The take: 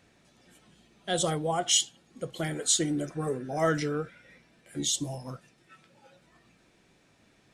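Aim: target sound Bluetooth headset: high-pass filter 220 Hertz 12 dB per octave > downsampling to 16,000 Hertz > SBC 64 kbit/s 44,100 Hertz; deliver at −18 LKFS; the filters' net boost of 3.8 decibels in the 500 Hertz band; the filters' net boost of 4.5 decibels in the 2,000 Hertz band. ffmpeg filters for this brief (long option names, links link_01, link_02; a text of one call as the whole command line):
ffmpeg -i in.wav -af "highpass=220,equalizer=frequency=500:width_type=o:gain=4.5,equalizer=frequency=2000:width_type=o:gain=5.5,aresample=16000,aresample=44100,volume=9.5dB" -ar 44100 -c:a sbc -b:a 64k out.sbc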